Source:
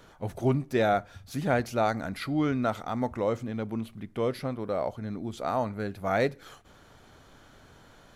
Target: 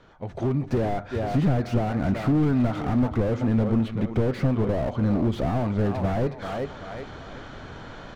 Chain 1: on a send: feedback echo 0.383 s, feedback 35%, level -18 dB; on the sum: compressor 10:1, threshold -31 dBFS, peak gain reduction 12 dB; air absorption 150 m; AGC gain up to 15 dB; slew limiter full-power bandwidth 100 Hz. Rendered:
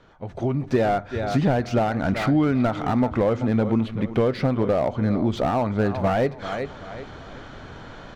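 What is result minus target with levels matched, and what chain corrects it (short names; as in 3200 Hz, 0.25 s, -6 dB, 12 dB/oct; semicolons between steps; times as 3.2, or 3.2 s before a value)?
slew limiter: distortion -11 dB
on a send: feedback echo 0.383 s, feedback 35%, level -18 dB; on the sum: compressor 10:1, threshold -31 dBFS, peak gain reduction 12 dB; air absorption 150 m; AGC gain up to 15 dB; slew limiter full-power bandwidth 32 Hz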